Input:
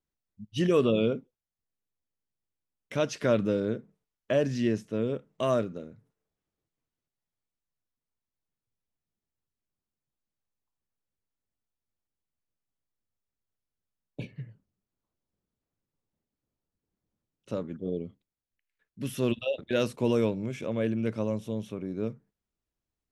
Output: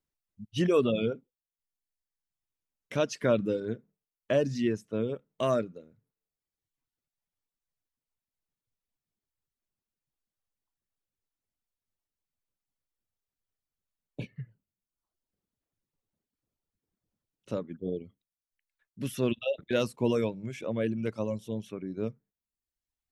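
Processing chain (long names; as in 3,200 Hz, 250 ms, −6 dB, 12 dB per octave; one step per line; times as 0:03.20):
reverb reduction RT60 1 s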